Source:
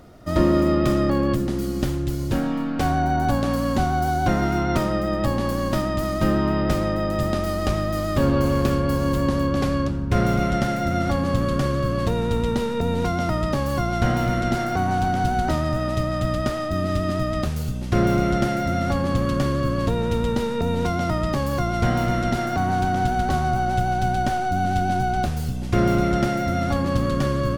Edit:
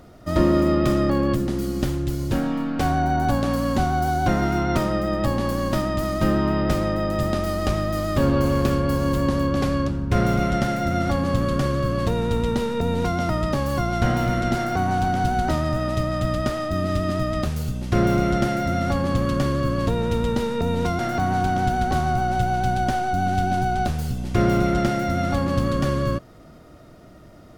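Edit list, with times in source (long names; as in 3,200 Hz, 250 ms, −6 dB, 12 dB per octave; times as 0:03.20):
0:20.99–0:22.37: remove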